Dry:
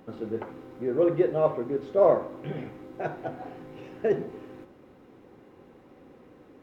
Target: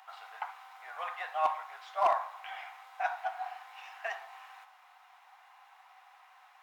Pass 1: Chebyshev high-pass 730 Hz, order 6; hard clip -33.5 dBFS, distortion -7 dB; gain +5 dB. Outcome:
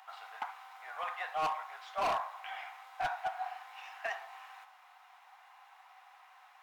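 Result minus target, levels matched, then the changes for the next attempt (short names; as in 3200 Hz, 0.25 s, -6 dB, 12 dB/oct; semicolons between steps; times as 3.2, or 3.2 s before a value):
hard clip: distortion +14 dB
change: hard clip -23.5 dBFS, distortion -21 dB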